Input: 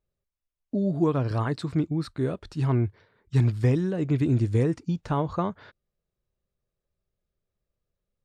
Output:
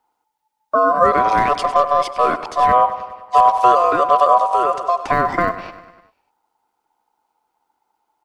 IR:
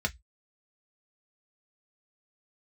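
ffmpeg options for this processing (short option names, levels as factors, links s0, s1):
-filter_complex "[0:a]acrossover=split=470|3000[s0][s1][s2];[s1]acompressor=threshold=0.0355:ratio=6[s3];[s0][s3][s2]amix=inputs=3:normalize=0,aecho=1:1:99|198|297|396|495|594:0.178|0.107|0.064|0.0384|0.023|0.0138,asplit=2[s4][s5];[s5]alimiter=limit=0.106:level=0:latency=1,volume=1.06[s6];[s4][s6]amix=inputs=2:normalize=0,asplit=3[s7][s8][s9];[s7]afade=t=out:st=4.37:d=0.02[s10];[s8]acompressor=threshold=0.126:ratio=6,afade=t=in:st=4.37:d=0.02,afade=t=out:st=5.03:d=0.02[s11];[s9]afade=t=in:st=5.03:d=0.02[s12];[s10][s11][s12]amix=inputs=3:normalize=0,aeval=exprs='val(0)*sin(2*PI*870*n/s)':c=same,asettb=1/sr,asplit=3[s13][s14][s15];[s13]atrim=end=1.384[s16];[s14]atrim=start=1.38:end=2.66,asetpts=PTS-STARTPTS,afade=t=in:d=0.004:c=qsin,afade=t=out:st=1.276:d=0.004:c=qsin,aeval=exprs='0.299*(cos(1*acos(clip(val(0)/0.299,-1,1)))-cos(1*PI/2))+0.0075*(cos(8*acos(clip(val(0)/0.299,-1,1)))-cos(8*PI/2))':c=same[s17];[s15]atrim=start=2.656[s18];[s16][s17]acrossfade=d=0.004:c1=hsin:c2=qsin[s19];[s19][s18]acrossfade=d=0.004:c1=qsin:c2=hsin,acrossover=split=160[s20][s21];[s20]acrusher=bits=2:mode=log:mix=0:aa=0.000001[s22];[s22][s21]amix=inputs=2:normalize=0,volume=2.51"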